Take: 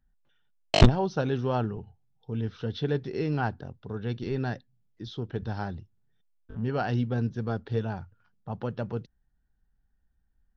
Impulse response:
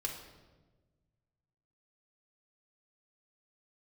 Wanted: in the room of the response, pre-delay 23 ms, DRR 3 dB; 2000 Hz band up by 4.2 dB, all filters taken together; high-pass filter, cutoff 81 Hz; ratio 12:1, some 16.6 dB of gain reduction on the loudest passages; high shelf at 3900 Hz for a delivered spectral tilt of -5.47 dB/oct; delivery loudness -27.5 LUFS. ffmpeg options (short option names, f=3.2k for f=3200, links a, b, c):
-filter_complex "[0:a]highpass=81,equalizer=f=2k:t=o:g=4,highshelf=f=3.9k:g=7,acompressor=threshold=-27dB:ratio=12,asplit=2[a][b];[1:a]atrim=start_sample=2205,adelay=23[c];[b][c]afir=irnorm=-1:irlink=0,volume=-4dB[d];[a][d]amix=inputs=2:normalize=0,volume=5.5dB"